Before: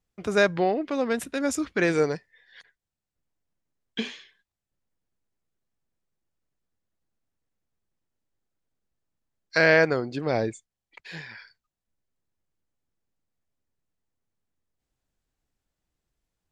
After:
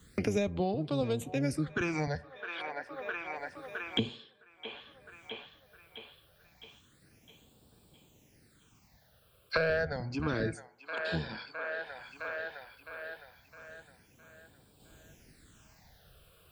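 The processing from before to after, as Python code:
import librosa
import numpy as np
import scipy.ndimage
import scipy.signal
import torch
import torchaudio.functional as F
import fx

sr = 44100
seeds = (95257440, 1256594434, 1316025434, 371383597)

p1 = fx.octave_divider(x, sr, octaves=1, level_db=0.0)
p2 = fx.highpass(p1, sr, hz=140.0, slope=6)
p3 = np.clip(10.0 ** (13.5 / 20.0) * p2, -1.0, 1.0) / 10.0 ** (13.5 / 20.0)
p4 = p2 + (p3 * librosa.db_to_amplitude(-9.0))
p5 = fx.phaser_stages(p4, sr, stages=8, low_hz=250.0, high_hz=2000.0, hz=0.29, feedback_pct=20)
p6 = fx.echo_wet_bandpass(p5, sr, ms=661, feedback_pct=44, hz=1400.0, wet_db=-18.0)
p7 = fx.rev_fdn(p6, sr, rt60_s=0.58, lf_ratio=0.75, hf_ratio=0.4, size_ms=39.0, drr_db=16.5)
p8 = fx.band_squash(p7, sr, depth_pct=100)
y = p8 * librosa.db_to_amplitude(-5.5)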